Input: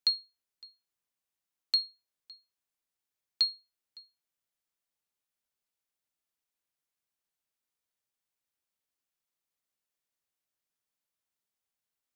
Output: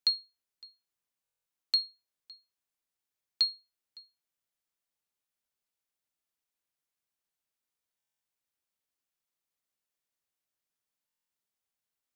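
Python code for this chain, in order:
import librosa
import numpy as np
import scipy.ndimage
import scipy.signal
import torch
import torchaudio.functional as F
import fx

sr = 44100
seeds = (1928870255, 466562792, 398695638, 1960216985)

y = fx.buffer_glitch(x, sr, at_s=(1.23, 7.98, 11.06), block=1024, repeats=9)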